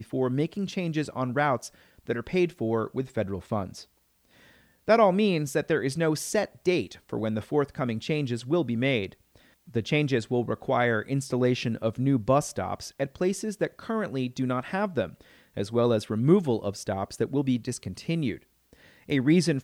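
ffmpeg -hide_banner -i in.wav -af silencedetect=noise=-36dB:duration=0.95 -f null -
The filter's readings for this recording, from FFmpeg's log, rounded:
silence_start: 3.81
silence_end: 4.88 | silence_duration: 1.06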